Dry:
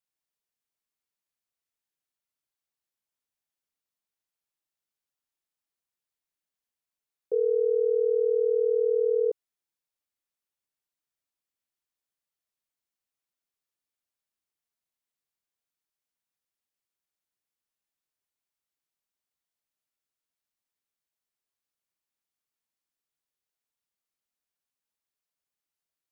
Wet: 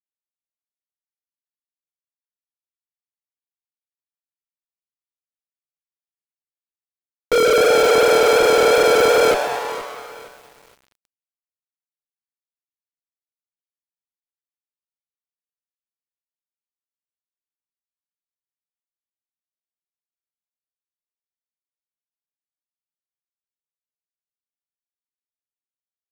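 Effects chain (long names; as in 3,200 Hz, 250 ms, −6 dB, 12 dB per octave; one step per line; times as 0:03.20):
chorus effect 2.7 Hz, depth 7.1 ms
fuzz pedal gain 50 dB, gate −53 dBFS
notch filter 400 Hz, Q 12
on a send: echo with shifted repeats 128 ms, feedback 64%, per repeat +130 Hz, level −10 dB
on the sum: feedback echo at a low word length 470 ms, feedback 35%, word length 6 bits, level −14 dB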